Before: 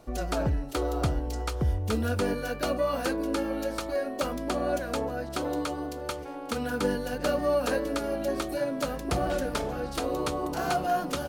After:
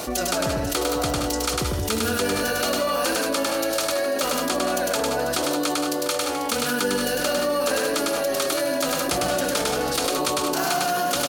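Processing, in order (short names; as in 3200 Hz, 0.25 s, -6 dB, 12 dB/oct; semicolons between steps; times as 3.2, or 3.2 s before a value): HPF 240 Hz 6 dB/oct; high shelf 2400 Hz +11 dB; tapped delay 0.102/0.147/0.172/0.181/0.492/0.697 s -3/-17.5/-11.5/-11.5/-13.5/-17 dB; fast leveller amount 70%; gain -1 dB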